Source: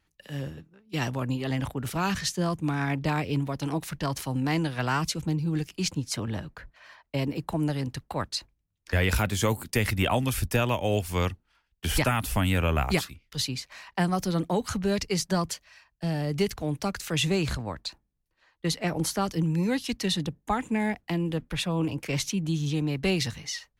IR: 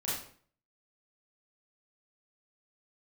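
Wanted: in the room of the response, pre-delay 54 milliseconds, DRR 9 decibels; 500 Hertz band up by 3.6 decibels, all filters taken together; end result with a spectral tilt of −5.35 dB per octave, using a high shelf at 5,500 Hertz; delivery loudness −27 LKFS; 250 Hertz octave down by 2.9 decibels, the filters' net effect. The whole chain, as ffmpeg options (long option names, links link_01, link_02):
-filter_complex "[0:a]equalizer=frequency=250:width_type=o:gain=-6.5,equalizer=frequency=500:width_type=o:gain=6.5,highshelf=frequency=5500:gain=-6,asplit=2[link_01][link_02];[1:a]atrim=start_sample=2205,adelay=54[link_03];[link_02][link_03]afir=irnorm=-1:irlink=0,volume=-13.5dB[link_04];[link_01][link_04]amix=inputs=2:normalize=0,volume=1.5dB"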